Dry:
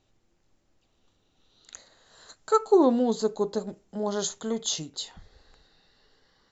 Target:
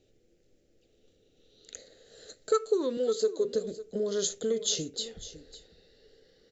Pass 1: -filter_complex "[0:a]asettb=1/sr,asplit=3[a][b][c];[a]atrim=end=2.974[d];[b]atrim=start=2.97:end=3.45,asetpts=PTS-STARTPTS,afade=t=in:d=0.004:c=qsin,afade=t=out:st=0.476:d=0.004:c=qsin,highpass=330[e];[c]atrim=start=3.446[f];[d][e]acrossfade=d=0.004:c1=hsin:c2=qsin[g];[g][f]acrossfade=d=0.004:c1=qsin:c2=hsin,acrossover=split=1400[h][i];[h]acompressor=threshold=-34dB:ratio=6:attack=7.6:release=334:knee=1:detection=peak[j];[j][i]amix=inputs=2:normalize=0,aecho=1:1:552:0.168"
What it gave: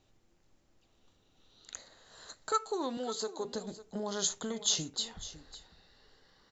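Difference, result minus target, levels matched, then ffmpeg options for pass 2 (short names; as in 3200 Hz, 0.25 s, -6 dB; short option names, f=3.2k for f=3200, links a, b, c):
500 Hz band -6.0 dB
-filter_complex "[0:a]asettb=1/sr,asplit=3[a][b][c];[a]atrim=end=2.974[d];[b]atrim=start=2.97:end=3.45,asetpts=PTS-STARTPTS,afade=t=in:d=0.004:c=qsin,afade=t=out:st=0.476:d=0.004:c=qsin,highpass=330[e];[c]atrim=start=3.446[f];[d][e]acrossfade=d=0.004:c1=hsin:c2=qsin[g];[g][f]acrossfade=d=0.004:c1=qsin:c2=hsin,acrossover=split=1400[h][i];[h]acompressor=threshold=-34dB:ratio=6:attack=7.6:release=334:knee=1:detection=peak,lowpass=f=470:t=q:w=4.3[j];[j][i]amix=inputs=2:normalize=0,aecho=1:1:552:0.168"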